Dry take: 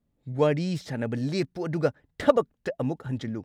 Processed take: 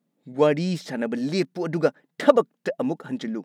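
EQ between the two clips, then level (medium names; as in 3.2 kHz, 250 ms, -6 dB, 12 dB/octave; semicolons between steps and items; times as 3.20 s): brick-wall FIR high-pass 150 Hz; +4.0 dB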